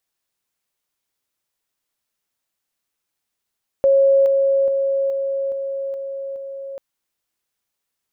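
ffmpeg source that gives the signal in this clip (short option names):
-f lavfi -i "aevalsrc='pow(10,(-10.5-3*floor(t/0.42))/20)*sin(2*PI*547*t)':d=2.94:s=44100"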